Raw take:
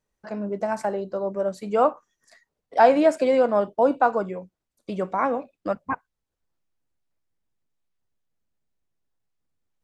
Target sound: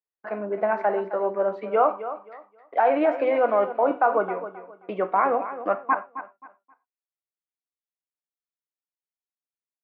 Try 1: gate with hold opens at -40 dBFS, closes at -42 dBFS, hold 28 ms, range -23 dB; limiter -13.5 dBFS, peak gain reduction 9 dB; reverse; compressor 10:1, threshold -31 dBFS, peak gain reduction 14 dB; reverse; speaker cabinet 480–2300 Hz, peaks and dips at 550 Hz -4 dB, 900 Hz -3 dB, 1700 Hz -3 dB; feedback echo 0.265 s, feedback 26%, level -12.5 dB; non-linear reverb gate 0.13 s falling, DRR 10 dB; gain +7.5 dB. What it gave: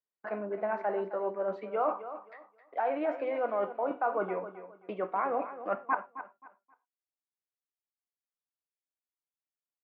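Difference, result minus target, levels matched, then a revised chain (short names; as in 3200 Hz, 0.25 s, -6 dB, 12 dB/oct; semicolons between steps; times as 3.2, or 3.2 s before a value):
compressor: peak gain reduction +10.5 dB
gate with hold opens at -40 dBFS, closes at -42 dBFS, hold 28 ms, range -23 dB; limiter -13.5 dBFS, peak gain reduction 9 dB; reverse; compressor 10:1, threshold -19 dBFS, peak gain reduction 3 dB; reverse; speaker cabinet 480–2300 Hz, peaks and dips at 550 Hz -4 dB, 900 Hz -3 dB, 1700 Hz -3 dB; feedback echo 0.265 s, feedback 26%, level -12.5 dB; non-linear reverb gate 0.13 s falling, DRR 10 dB; gain +7.5 dB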